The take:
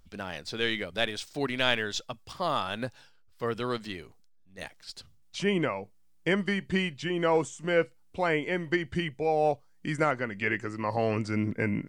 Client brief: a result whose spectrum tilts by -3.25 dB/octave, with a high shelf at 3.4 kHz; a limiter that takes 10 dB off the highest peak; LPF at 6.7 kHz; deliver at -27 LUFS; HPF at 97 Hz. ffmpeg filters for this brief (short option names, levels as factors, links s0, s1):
-af "highpass=97,lowpass=6700,highshelf=f=3400:g=6,volume=1.68,alimiter=limit=0.224:level=0:latency=1"